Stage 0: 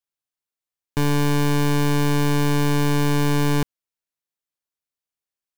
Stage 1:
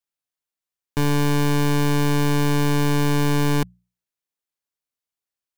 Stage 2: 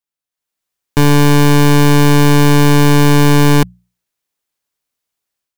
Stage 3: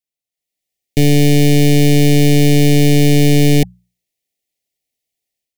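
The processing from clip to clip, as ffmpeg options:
ffmpeg -i in.wav -af "bandreject=frequency=60:width_type=h:width=6,bandreject=frequency=120:width_type=h:width=6,bandreject=frequency=180:width_type=h:width=6" out.wav
ffmpeg -i in.wav -af "dynaudnorm=framelen=300:gausssize=3:maxgain=11dB" out.wav
ffmpeg -i in.wav -af "asuperstop=centerf=1200:order=20:qfactor=1.2,volume=-1dB" out.wav

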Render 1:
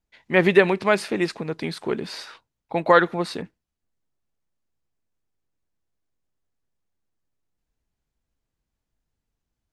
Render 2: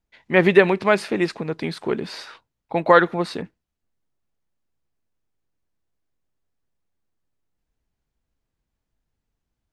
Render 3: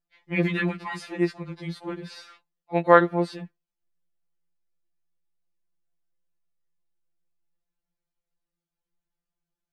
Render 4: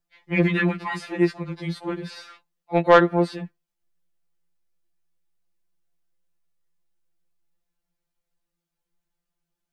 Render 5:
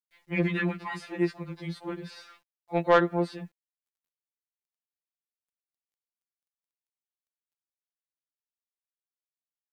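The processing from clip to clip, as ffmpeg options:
ffmpeg -i in.wav -af "highshelf=frequency=5000:gain=-5.5,volume=2dB" out.wav
ffmpeg -i in.wav -af "afftfilt=real='re*2.83*eq(mod(b,8),0)':imag='im*2.83*eq(mod(b,8),0)':win_size=2048:overlap=0.75,volume=-6dB" out.wav
ffmpeg -i in.wav -filter_complex "[0:a]acrossover=split=300|3100[link_01][link_02][link_03];[link_03]alimiter=level_in=15dB:limit=-24dB:level=0:latency=1:release=375,volume=-15dB[link_04];[link_01][link_02][link_04]amix=inputs=3:normalize=0,asoftclip=type=tanh:threshold=-9.5dB,volume=4.5dB" out.wav
ffmpeg -i in.wav -af "acrusher=bits=10:mix=0:aa=0.000001,volume=-6.5dB" out.wav

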